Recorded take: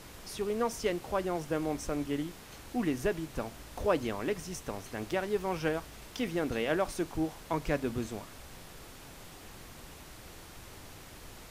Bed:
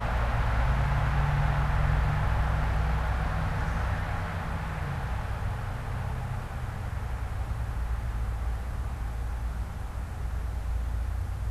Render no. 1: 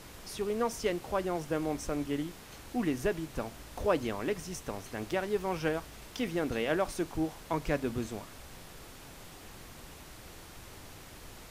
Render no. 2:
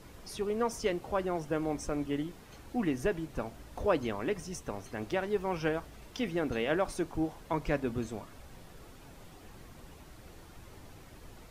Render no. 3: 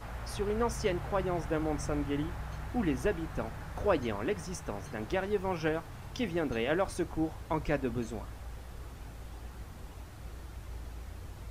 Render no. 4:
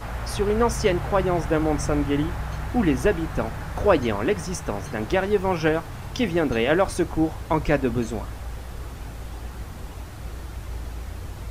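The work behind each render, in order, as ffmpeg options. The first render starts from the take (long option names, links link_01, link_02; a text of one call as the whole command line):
ffmpeg -i in.wav -af anull out.wav
ffmpeg -i in.wav -af "afftdn=noise_reduction=8:noise_floor=-50" out.wav
ffmpeg -i in.wav -i bed.wav -filter_complex "[1:a]volume=-13.5dB[link_01];[0:a][link_01]amix=inputs=2:normalize=0" out.wav
ffmpeg -i in.wav -af "volume=10dB" out.wav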